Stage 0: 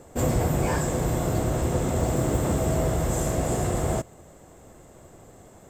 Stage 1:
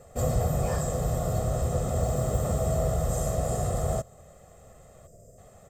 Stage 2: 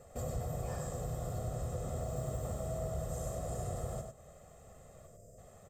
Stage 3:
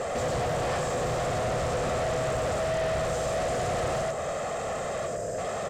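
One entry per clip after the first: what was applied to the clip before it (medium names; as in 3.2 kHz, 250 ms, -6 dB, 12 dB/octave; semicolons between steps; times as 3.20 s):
time-frequency box 5.07–5.38 s, 710–4600 Hz -18 dB; dynamic bell 2.3 kHz, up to -7 dB, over -53 dBFS, Q 1.4; comb 1.6 ms, depth 79%; trim -5 dB
compression 2:1, threshold -37 dBFS, peak gain reduction 9.5 dB; on a send: delay 98 ms -6 dB; on the sum: trim -5 dB
overdrive pedal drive 38 dB, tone 4.3 kHz, clips at -25.5 dBFS; distance through air 59 m; trim +4.5 dB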